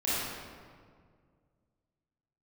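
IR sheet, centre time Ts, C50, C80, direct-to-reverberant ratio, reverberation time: 133 ms, -5.0 dB, -1.5 dB, -11.0 dB, 2.0 s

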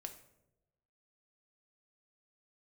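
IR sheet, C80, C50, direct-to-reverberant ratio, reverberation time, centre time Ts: 14.0 dB, 10.5 dB, 5.0 dB, no single decay rate, 11 ms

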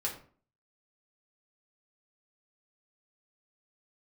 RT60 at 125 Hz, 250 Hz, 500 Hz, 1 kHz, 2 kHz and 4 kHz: 0.50 s, 0.55 s, 0.45 s, 0.45 s, 0.35 s, 0.30 s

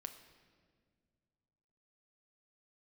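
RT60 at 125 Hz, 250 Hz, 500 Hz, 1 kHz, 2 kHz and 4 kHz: 3.0 s, 2.6 s, 2.2 s, 1.5 s, 1.5 s, 1.3 s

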